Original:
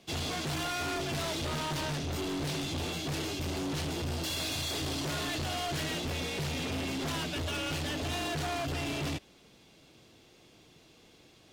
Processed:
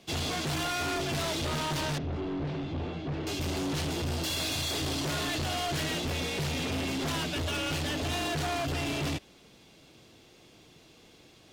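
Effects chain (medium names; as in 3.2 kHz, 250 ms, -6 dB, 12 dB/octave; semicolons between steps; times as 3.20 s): 1.98–3.27 s: tape spacing loss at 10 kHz 39 dB; trim +2.5 dB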